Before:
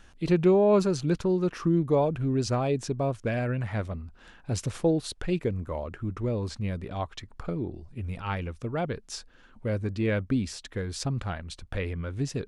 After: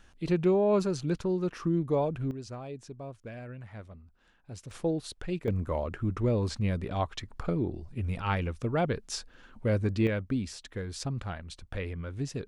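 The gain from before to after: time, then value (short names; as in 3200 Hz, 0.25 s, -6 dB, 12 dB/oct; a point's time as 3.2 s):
-4 dB
from 2.31 s -14 dB
from 4.71 s -5.5 dB
from 5.48 s +2 dB
from 10.07 s -4 dB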